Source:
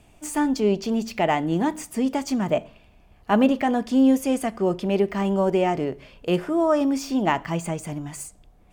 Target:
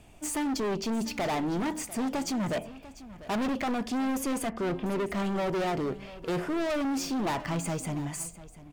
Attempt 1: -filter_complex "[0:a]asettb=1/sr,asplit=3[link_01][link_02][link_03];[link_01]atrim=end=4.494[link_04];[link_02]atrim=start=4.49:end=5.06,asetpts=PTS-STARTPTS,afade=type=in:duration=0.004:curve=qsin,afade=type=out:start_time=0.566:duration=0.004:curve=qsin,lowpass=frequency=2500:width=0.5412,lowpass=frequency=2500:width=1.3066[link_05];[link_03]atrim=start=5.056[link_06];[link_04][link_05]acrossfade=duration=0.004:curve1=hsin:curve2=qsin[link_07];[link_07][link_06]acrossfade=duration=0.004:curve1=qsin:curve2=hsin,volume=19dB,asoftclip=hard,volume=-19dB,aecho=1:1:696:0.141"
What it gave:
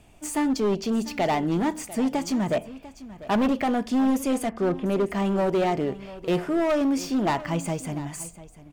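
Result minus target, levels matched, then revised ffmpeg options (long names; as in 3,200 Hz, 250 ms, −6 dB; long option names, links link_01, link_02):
gain into a clipping stage and back: distortion −6 dB
-filter_complex "[0:a]asettb=1/sr,asplit=3[link_01][link_02][link_03];[link_01]atrim=end=4.494[link_04];[link_02]atrim=start=4.49:end=5.06,asetpts=PTS-STARTPTS,afade=type=in:duration=0.004:curve=qsin,afade=type=out:start_time=0.566:duration=0.004:curve=qsin,lowpass=frequency=2500:width=0.5412,lowpass=frequency=2500:width=1.3066[link_05];[link_03]atrim=start=5.056[link_06];[link_04][link_05]acrossfade=duration=0.004:curve1=hsin:curve2=qsin[link_07];[link_07][link_06]acrossfade=duration=0.004:curve1=qsin:curve2=hsin,volume=27.5dB,asoftclip=hard,volume=-27.5dB,aecho=1:1:696:0.141"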